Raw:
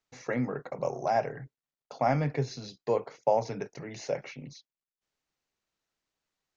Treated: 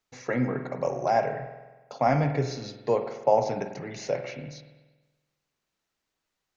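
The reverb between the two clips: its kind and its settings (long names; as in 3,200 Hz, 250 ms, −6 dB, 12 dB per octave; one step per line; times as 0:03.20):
spring reverb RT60 1.2 s, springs 47 ms, chirp 75 ms, DRR 7 dB
level +3 dB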